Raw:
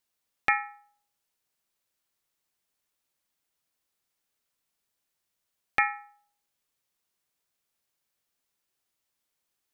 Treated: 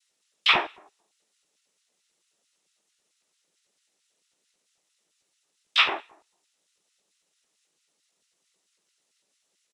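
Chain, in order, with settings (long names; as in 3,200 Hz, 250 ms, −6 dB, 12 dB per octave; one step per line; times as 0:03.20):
cochlear-implant simulation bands 12
auto-filter high-pass square 4.5 Hz 360–2,900 Hz
pitch-shifted copies added −12 semitones −5 dB, +5 semitones −1 dB
level +3 dB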